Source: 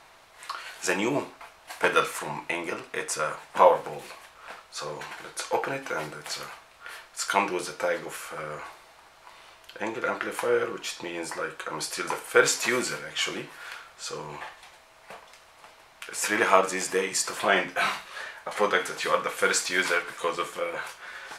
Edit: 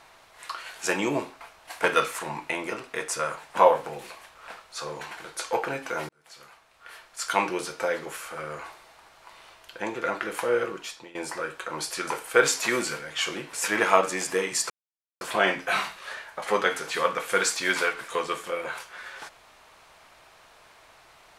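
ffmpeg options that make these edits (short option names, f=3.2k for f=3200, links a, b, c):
-filter_complex "[0:a]asplit=5[a][b][c][d][e];[a]atrim=end=6.09,asetpts=PTS-STARTPTS,afade=t=out:st=6.086:d=0.004:c=hsin[f];[b]atrim=start=6.09:end=11.15,asetpts=PTS-STARTPTS,afade=t=in:d=1.35,afade=t=out:st=4.59:d=0.47:silence=0.141254[g];[c]atrim=start=11.15:end=13.532,asetpts=PTS-STARTPTS,afade=t=in:d=0.004:c=hsin:silence=0.141254[h];[d]atrim=start=16.128:end=17.3,asetpts=PTS-STARTPTS,afade=t=out:st=1.168:d=0.004:c=hsin,apad=pad_dur=0.51[i];[e]atrim=start=17.3,asetpts=PTS-STARTPTS,afade=t=in:d=0.004:c=hsin[j];[f][g][h]concat=n=3:v=0:a=1[k];[i][j]concat=n=2:v=0:a=1[l];[k][l]acrossfade=d=0.004:c1=hsin:c2=hsin"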